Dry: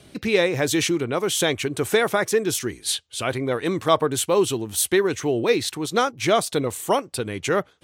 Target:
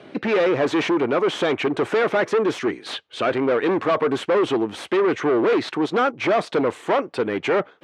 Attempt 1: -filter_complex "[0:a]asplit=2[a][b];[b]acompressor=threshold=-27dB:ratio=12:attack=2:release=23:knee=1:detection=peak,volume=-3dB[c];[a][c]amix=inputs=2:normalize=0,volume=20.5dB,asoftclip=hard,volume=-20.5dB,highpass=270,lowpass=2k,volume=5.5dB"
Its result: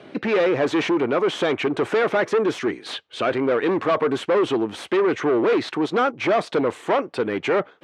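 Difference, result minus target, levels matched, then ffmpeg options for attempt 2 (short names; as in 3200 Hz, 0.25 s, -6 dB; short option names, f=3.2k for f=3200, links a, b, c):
compressor: peak gain reduction +6.5 dB
-filter_complex "[0:a]asplit=2[a][b];[b]acompressor=threshold=-20dB:ratio=12:attack=2:release=23:knee=1:detection=peak,volume=-3dB[c];[a][c]amix=inputs=2:normalize=0,volume=20.5dB,asoftclip=hard,volume=-20.5dB,highpass=270,lowpass=2k,volume=5.5dB"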